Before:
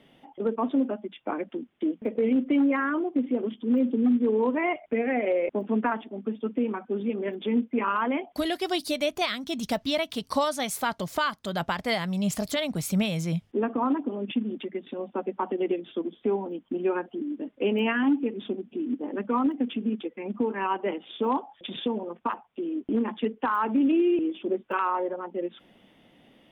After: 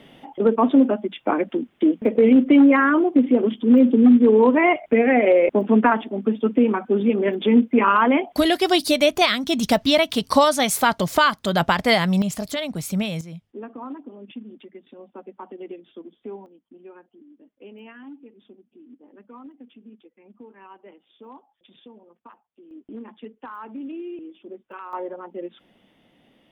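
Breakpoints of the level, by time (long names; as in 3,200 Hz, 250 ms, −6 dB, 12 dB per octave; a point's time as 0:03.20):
+9.5 dB
from 0:12.22 +1 dB
from 0:13.21 −9.5 dB
from 0:16.46 −18 dB
from 0:22.71 −11.5 dB
from 0:24.93 −2 dB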